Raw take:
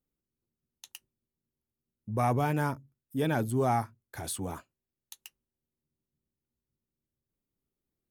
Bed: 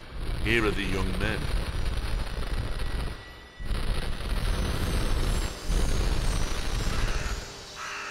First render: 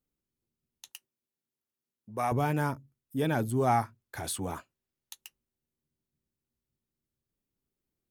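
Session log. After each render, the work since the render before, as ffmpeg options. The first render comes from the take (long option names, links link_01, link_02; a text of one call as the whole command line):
ffmpeg -i in.wav -filter_complex "[0:a]asettb=1/sr,asplit=3[link_01][link_02][link_03];[link_01]atrim=end=0.904[link_04];[link_02]atrim=start=0.9:end=2.32,asetpts=PTS-STARTPTS,afade=type=in:duration=0.004:curve=qsin,afade=type=out:start_time=1.416:duration=0.004:curve=qsin,highpass=frequency=520:poles=1[link_05];[link_03]atrim=start=2.316[link_06];[link_04][link_05]acrossfade=duration=0.004:curve1=hsin:curve2=qsin[link_07];[link_07][link_06]acrossfade=duration=0.004:curve1=qsin:curve2=hsin,asettb=1/sr,asplit=3[link_08][link_09][link_10];[link_08]atrim=end=3.674[link_11];[link_09]atrim=start=3.67:end=5.15,asetpts=PTS-STARTPTS,afade=type=in:duration=0.004:curve=qsin,afade=type=out:start_time=1.476:duration=0.004:curve=qsin,equalizer=frequency=1800:width=0.32:gain=3.5[link_12];[link_10]atrim=start=5.146[link_13];[link_11][link_12]acrossfade=duration=0.004:curve1=hsin:curve2=qsin[link_14];[link_14][link_13]acrossfade=duration=0.004:curve1=qsin:curve2=hsin" out.wav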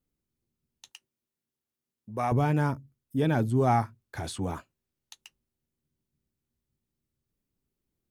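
ffmpeg -i in.wav -filter_complex "[0:a]lowshelf=frequency=330:gain=6,acrossover=split=8000[link_01][link_02];[link_02]acompressor=threshold=-60dB:ratio=4:attack=1:release=60[link_03];[link_01][link_03]amix=inputs=2:normalize=0" out.wav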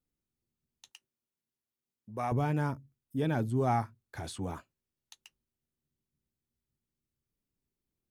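ffmpeg -i in.wav -af "volume=-5dB" out.wav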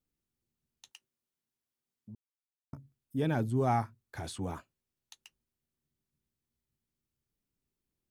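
ffmpeg -i in.wav -filter_complex "[0:a]asplit=3[link_01][link_02][link_03];[link_01]atrim=end=2.15,asetpts=PTS-STARTPTS,afade=type=out:start_time=2.146:duration=0.004:curve=hsin[link_04];[link_02]atrim=start=2.15:end=2.73,asetpts=PTS-STARTPTS,volume=0[link_05];[link_03]atrim=start=2.73,asetpts=PTS-STARTPTS,afade=type=in:duration=0.004:curve=hsin[link_06];[link_04][link_05][link_06]concat=n=3:v=0:a=1" out.wav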